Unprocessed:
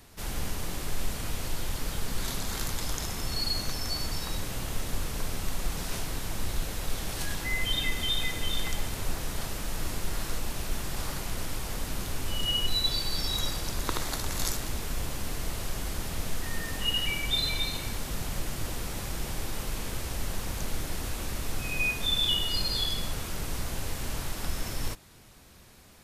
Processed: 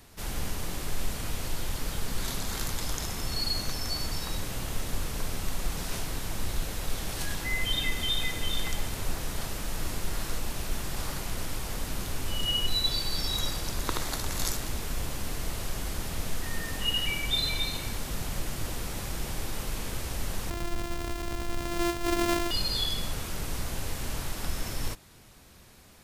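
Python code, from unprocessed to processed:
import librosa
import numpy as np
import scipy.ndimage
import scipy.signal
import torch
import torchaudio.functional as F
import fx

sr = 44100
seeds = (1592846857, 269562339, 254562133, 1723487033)

y = fx.sample_sort(x, sr, block=128, at=(20.5, 22.51))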